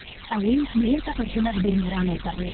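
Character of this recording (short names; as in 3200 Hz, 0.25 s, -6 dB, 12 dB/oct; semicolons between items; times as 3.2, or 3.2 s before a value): tremolo saw up 7.4 Hz, depth 35%; a quantiser's noise floor 6-bit, dither triangular; phasing stages 12, 2.5 Hz, lowest notch 420–1500 Hz; Opus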